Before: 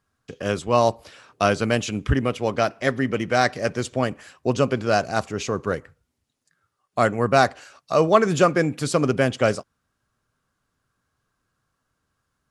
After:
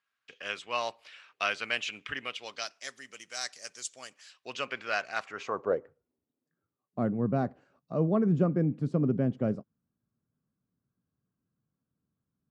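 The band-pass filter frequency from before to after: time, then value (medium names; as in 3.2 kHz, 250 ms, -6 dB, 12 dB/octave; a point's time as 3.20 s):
band-pass filter, Q 1.7
2.17 s 2.5 kHz
2.92 s 7.2 kHz
4.03 s 7.2 kHz
4.67 s 2.2 kHz
5.21 s 2.2 kHz
5.75 s 500 Hz
7.09 s 190 Hz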